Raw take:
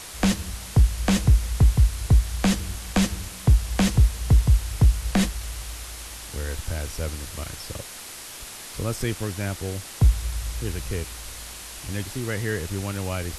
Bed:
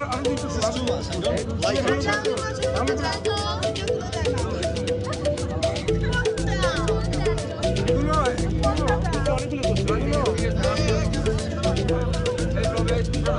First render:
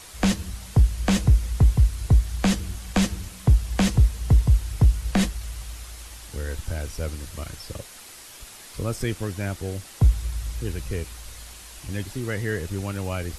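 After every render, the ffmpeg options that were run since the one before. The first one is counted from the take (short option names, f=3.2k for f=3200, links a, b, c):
-af "afftdn=nr=6:nf=-39"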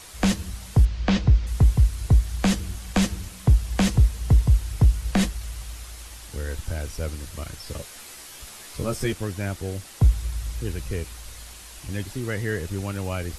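-filter_complex "[0:a]asettb=1/sr,asplit=3[a][b][c];[a]atrim=end=0.854[d];[b]atrim=start=0.85:end=1.47,asetpts=PTS-STARTPTS,afade=t=in:d=0.004:c=qsin,afade=t=out:st=0.616:d=0.004:c=qsin,lowpass=f=5.2k:w=0.5412,lowpass=f=5.2k:w=1.3066[e];[c]atrim=start=1.466[f];[d][e]acrossfade=d=0.004:c1=hsin:c2=qsin[g];[g][f]acrossfade=d=0.004:c1=qsin:c2=hsin,asettb=1/sr,asplit=3[h][i][j];[h]atrim=end=7.654[k];[i]atrim=start=7.65:end=9.13,asetpts=PTS-STARTPTS,afade=t=in:d=0.004:c=qsin,afade=t=out:st=1.476:d=0.004:c=qsin,asplit=2[l][m];[m]adelay=14,volume=-3dB[n];[l][n]amix=inputs=2:normalize=0,atrim=end_sample=65268[o];[j]atrim=start=9.126[p];[k][o]acrossfade=d=0.004:c1=hsin:c2=qsin[q];[q][p]acrossfade=d=0.004:c1=qsin:c2=hsin"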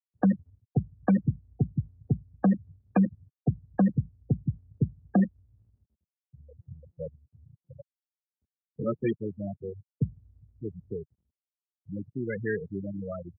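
-af "afftfilt=real='re*gte(hypot(re,im),0.141)':imag='im*gte(hypot(re,im),0.141)':win_size=1024:overlap=0.75,highpass=f=140:w=0.5412,highpass=f=140:w=1.3066"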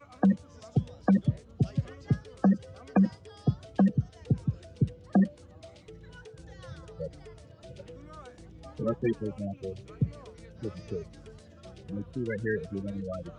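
-filter_complex "[1:a]volume=-26dB[a];[0:a][a]amix=inputs=2:normalize=0"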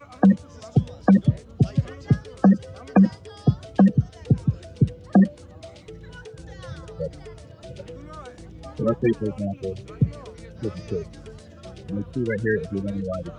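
-af "volume=7.5dB"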